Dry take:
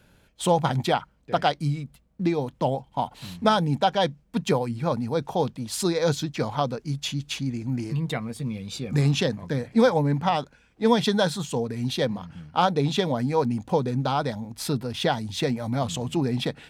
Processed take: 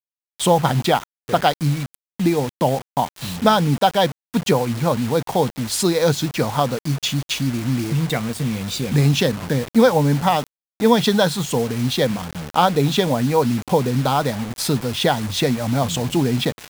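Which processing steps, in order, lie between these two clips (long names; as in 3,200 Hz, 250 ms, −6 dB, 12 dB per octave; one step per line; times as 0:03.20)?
in parallel at −0.5 dB: downward compressor 16 to 1, threshold −32 dBFS, peak gain reduction 18.5 dB
on the sum: bit reduction 6 bits
level +4 dB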